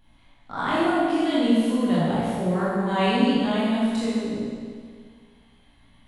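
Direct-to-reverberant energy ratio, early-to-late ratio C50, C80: −10.0 dB, −4.5 dB, −1.5 dB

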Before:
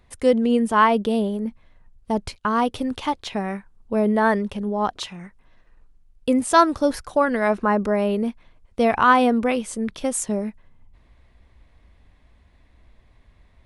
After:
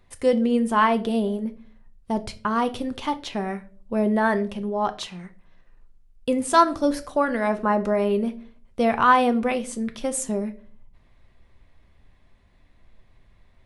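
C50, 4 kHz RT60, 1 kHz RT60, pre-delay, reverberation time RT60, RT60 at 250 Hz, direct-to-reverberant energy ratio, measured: 17.0 dB, 0.35 s, 0.35 s, 5 ms, 0.45 s, 0.60 s, 8.5 dB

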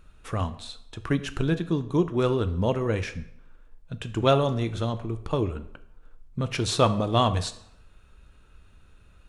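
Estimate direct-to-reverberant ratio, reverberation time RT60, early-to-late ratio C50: 10.0 dB, 0.75 s, 14.5 dB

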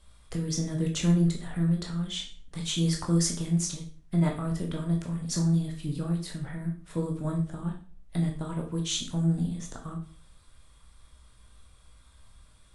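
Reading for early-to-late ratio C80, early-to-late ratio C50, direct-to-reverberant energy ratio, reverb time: 13.0 dB, 8.5 dB, 1.0 dB, 0.45 s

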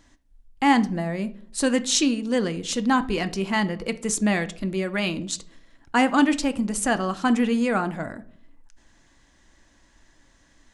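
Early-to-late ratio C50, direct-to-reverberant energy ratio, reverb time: 17.5 dB, 10.0 dB, 0.55 s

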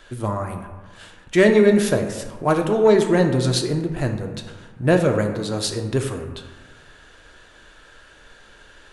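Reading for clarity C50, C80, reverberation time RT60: 7.5 dB, 9.0 dB, 1.3 s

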